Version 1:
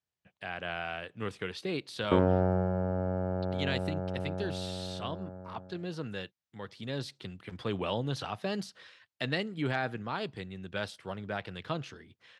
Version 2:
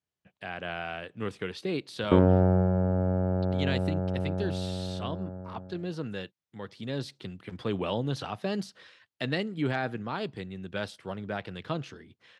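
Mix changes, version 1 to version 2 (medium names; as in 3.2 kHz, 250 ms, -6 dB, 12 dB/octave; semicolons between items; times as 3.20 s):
background: add bass shelf 110 Hz +9 dB; master: add peaking EQ 260 Hz +4 dB 2.3 oct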